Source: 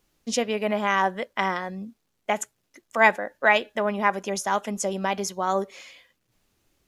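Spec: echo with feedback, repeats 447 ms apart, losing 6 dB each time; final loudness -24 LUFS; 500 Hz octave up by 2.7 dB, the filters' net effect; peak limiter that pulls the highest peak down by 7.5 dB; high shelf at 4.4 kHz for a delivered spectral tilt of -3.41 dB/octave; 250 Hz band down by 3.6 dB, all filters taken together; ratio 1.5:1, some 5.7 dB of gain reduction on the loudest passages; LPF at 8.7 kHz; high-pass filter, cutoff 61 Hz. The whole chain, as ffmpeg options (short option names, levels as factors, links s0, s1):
-af "highpass=61,lowpass=8700,equalizer=f=250:t=o:g=-6,equalizer=f=500:t=o:g=5,highshelf=f=4400:g=-5.5,acompressor=threshold=0.0398:ratio=1.5,alimiter=limit=0.126:level=0:latency=1,aecho=1:1:447|894|1341|1788|2235|2682:0.501|0.251|0.125|0.0626|0.0313|0.0157,volume=2"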